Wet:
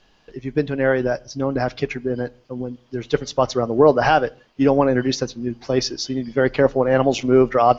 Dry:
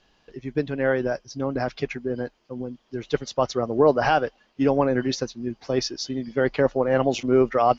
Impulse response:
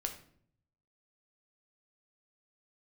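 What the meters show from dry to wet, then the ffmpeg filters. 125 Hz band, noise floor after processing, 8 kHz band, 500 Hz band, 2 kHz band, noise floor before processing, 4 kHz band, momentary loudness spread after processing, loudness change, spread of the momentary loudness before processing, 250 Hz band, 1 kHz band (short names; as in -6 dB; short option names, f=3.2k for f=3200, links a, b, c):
+5.0 dB, -57 dBFS, n/a, +4.0 dB, +4.0 dB, -65 dBFS, +4.0 dB, 13 LU, +4.0 dB, 13 LU, +4.5 dB, +4.5 dB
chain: -filter_complex "[0:a]asplit=2[a][b];[b]lowshelf=f=120:g=11[c];[1:a]atrim=start_sample=2205,afade=t=out:st=0.26:d=0.01,atrim=end_sample=11907[d];[c][d]afir=irnorm=-1:irlink=0,volume=-16dB[e];[a][e]amix=inputs=2:normalize=0,volume=3dB"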